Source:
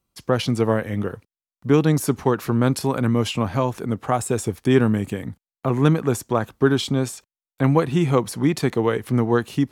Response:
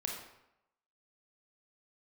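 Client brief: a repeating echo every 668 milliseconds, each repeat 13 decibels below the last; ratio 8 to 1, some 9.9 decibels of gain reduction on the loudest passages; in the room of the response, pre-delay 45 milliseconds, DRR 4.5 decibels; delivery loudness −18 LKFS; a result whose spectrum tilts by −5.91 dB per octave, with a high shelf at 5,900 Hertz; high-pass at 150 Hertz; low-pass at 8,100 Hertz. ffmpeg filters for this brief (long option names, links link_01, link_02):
-filter_complex "[0:a]highpass=150,lowpass=8100,highshelf=frequency=5900:gain=-5,acompressor=threshold=-22dB:ratio=8,aecho=1:1:668|1336|2004:0.224|0.0493|0.0108,asplit=2[link_01][link_02];[1:a]atrim=start_sample=2205,adelay=45[link_03];[link_02][link_03]afir=irnorm=-1:irlink=0,volume=-6dB[link_04];[link_01][link_04]amix=inputs=2:normalize=0,volume=9dB"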